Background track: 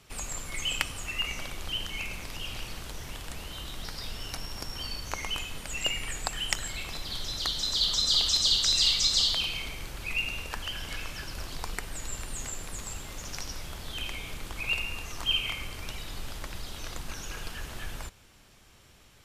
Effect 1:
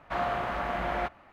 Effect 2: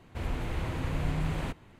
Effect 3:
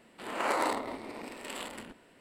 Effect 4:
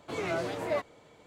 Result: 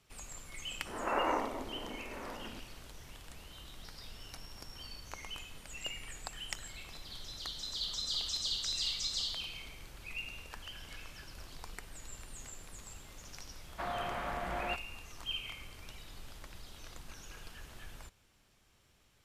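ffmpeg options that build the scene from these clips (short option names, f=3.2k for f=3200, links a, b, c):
-filter_complex "[0:a]volume=-11.5dB[a];[3:a]lowpass=f=1.8k:w=0.5412,lowpass=f=1.8k:w=1.3066[b];[1:a]alimiter=limit=-21.5dB:level=0:latency=1:release=172[c];[b]atrim=end=2.2,asetpts=PTS-STARTPTS,volume=-2dB,afade=t=in:d=0.004:c=hsin,afade=t=out:st=2.196:d=0.004:c=hsin,adelay=670[d];[c]atrim=end=1.32,asetpts=PTS-STARTPTS,volume=-6.5dB,afade=t=in:d=0.004:c=hsin,afade=t=out:st=1.316:d=0.004:c=hsin,adelay=13680[e];[a][d][e]amix=inputs=3:normalize=0"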